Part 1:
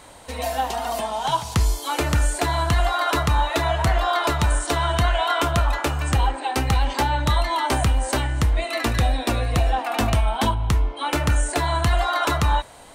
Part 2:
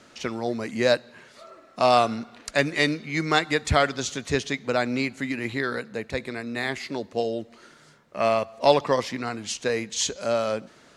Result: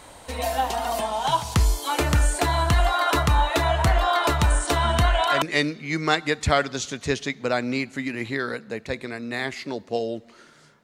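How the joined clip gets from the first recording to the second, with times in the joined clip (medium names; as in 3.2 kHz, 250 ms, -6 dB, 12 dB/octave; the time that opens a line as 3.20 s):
part 1
4.84 s: add part 2 from 2.08 s 0.58 s -6.5 dB
5.42 s: go over to part 2 from 2.66 s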